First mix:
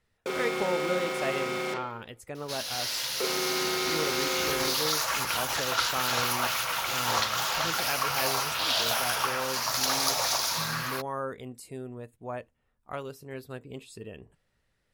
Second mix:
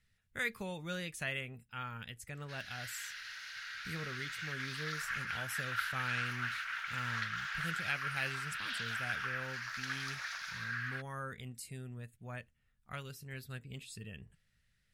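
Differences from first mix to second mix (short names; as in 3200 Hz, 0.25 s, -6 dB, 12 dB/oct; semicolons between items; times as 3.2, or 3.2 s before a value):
first sound: muted; second sound: add band-pass 1600 Hz, Q 3.4; master: add band shelf 550 Hz -14 dB 2.4 oct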